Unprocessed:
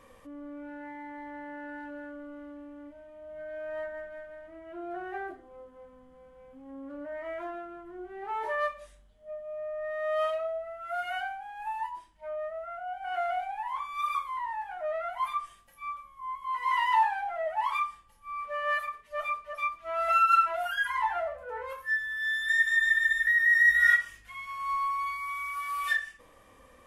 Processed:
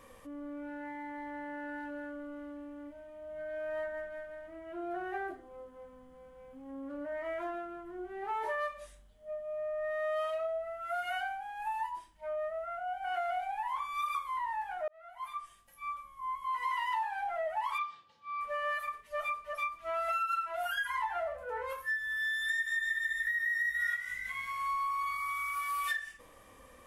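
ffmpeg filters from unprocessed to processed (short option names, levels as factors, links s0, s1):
-filter_complex "[0:a]asettb=1/sr,asplit=3[s0][s1][s2];[s0]atrim=end=17.784[s3];[s1]atrim=start=17.78:end=18.41,asetpts=PTS-STARTPTS,afade=t=in:d=0.004:c=qsin,afade=t=out:st=0.626:d=0.004:c=qsin,highpass=f=120:w=0.5412,highpass=f=120:w=1.3066,equalizer=f=190:t=q:w=4:g=-4,equalizer=f=460:t=q:w=4:g=3,equalizer=f=1000:t=q:w=4:g=-3,equalizer=f=1900:t=q:w=4:g=-4,equalizer=f=3900:t=q:w=4:g=8,lowpass=f=5200:w=0.5412,lowpass=f=5200:w=1.3066[s4];[s2]atrim=start=18.406[s5];[s3][s4]acrossfade=d=0.004:c1=hsin:c2=qsin[s6];[s6][s5]acrossfade=d=0.004:c1=qsin:c2=hsin,asettb=1/sr,asplit=3[s7][s8][s9];[s7]atrim=end=22.294[s10];[s8]atrim=start=22.29:end=25.64,asetpts=PTS-STARTPTS,afade=t=in:d=0.004:c=qsin,afade=t=out:st=3.346:d=0.004:c=qsin,asplit=6[s11][s12][s13][s14][s15][s16];[s12]adelay=182,afreqshift=57,volume=0.178[s17];[s13]adelay=364,afreqshift=114,volume=0.0891[s18];[s14]adelay=546,afreqshift=171,volume=0.0447[s19];[s15]adelay=728,afreqshift=228,volume=0.0221[s20];[s16]adelay=910,afreqshift=285,volume=0.0111[s21];[s11][s17][s18][s19][s20][s21]amix=inputs=6:normalize=0,atrim=end_sample=147735[s22];[s9]atrim=start=25.636[s23];[s10][s22]acrossfade=d=0.004:c1=hsin:c2=qsin[s24];[s24][s23]acrossfade=d=0.004:c1=qsin:c2=hsin,asplit=2[s25][s26];[s25]atrim=end=14.88,asetpts=PTS-STARTPTS,afade=t=out:st=14.876:d=0.004:c=hsin[s27];[s26]atrim=start=14.88,asetpts=PTS-STARTPTS,afade=t=in:d=1.24[s28];[s27][s28]concat=n=2:v=0:a=1,highshelf=f=7400:g=6,acompressor=threshold=0.0282:ratio=6"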